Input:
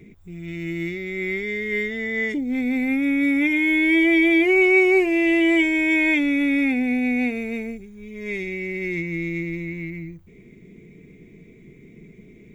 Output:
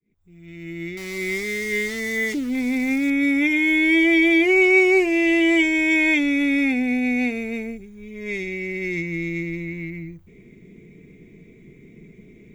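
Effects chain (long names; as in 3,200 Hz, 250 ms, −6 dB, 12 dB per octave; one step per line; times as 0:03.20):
fade in at the beginning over 1.29 s
0:00.97–0:03.10: centre clipping without the shift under −34 dBFS
dynamic equaliser 5,900 Hz, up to +8 dB, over −44 dBFS, Q 1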